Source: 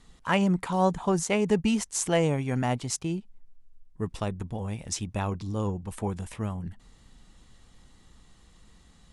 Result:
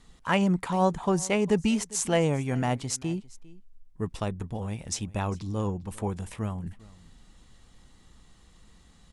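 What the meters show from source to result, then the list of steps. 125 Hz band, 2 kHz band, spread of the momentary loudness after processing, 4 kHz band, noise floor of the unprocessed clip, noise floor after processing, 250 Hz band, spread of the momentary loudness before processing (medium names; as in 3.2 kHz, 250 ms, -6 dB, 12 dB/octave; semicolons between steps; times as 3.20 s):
0.0 dB, 0.0 dB, 10 LU, 0.0 dB, -58 dBFS, -57 dBFS, 0.0 dB, 10 LU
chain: delay 401 ms -22 dB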